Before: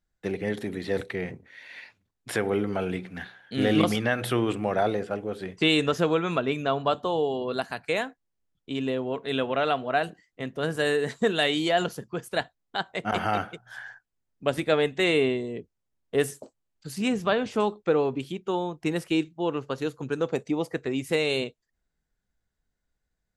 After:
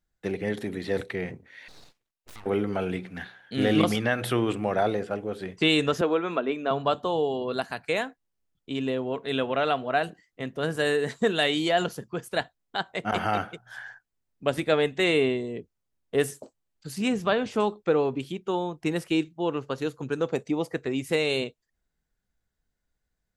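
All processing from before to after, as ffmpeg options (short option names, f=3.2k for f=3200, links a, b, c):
-filter_complex "[0:a]asettb=1/sr,asplit=3[a][b][c];[a]atrim=end=1.684[d];[b]atrim=start=1.68:end=2.46,asetpts=PTS-STARTPTS,afade=t=in:d=0.004:c=qsin,afade=t=out:st=0.776:d=0.004:c=qsin,highpass=f=470:p=1,acompressor=threshold=-47dB:ratio=2.5:attack=3.2:release=140:knee=1:detection=peak,aeval=exprs='abs(val(0))':c=same[e];[c]atrim=start=2.456[f];[d][e]acrossfade=d=0.004:c1=hsin:c2=qsin[g];[g][f]acrossfade=d=0.004:c1=qsin:c2=hsin,asettb=1/sr,asplit=3[h][i][j];[h]atrim=end=6.014[k];[i]atrim=start=6.01:end=6.71,asetpts=PTS-STARTPTS,afade=t=in:d=0.004:c=qsin,afade=t=out:st=0.696:d=0.004:c=qsin,highpass=f=220:w=0.5412,highpass=f=220:w=1.3066,aemphasis=mode=reproduction:type=75kf[l];[j]atrim=start=6.706[m];[k][l]acrossfade=d=0.004:c1=hsin:c2=qsin[n];[n][m]acrossfade=d=0.004:c1=qsin:c2=hsin"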